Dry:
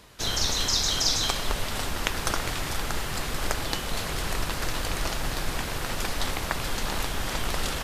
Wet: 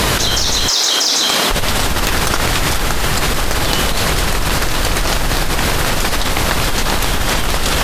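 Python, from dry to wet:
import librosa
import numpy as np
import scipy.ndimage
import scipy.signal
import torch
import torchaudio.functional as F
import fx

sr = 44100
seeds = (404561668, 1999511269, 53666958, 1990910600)

y = fx.highpass(x, sr, hz=fx.line((0.68, 370.0), (1.5, 170.0)), slope=24, at=(0.68, 1.5), fade=0.02)
y = fx.fold_sine(y, sr, drive_db=9, ceiling_db=-4.0)
y = fx.env_flatten(y, sr, amount_pct=100)
y = y * librosa.db_to_amplitude(-4.5)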